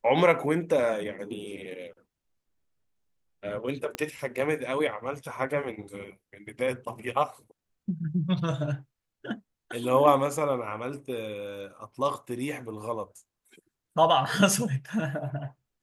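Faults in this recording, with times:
3.95 s: pop -16 dBFS

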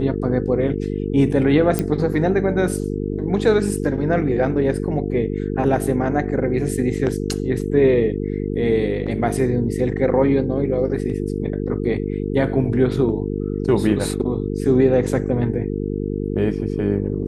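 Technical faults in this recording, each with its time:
buzz 50 Hz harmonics 9 -24 dBFS
1.79 s: pop -7 dBFS

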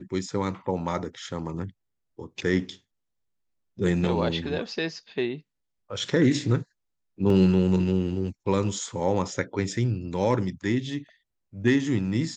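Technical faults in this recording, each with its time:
7.30 s: dropout 2.4 ms

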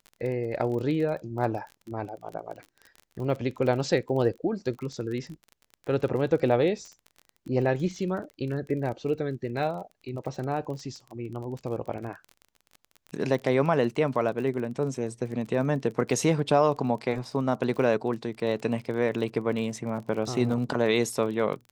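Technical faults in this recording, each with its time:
crackle 28 per s -35 dBFS

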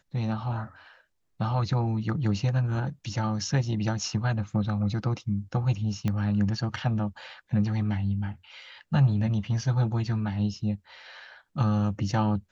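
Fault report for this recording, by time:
6.08 s: pop -16 dBFS

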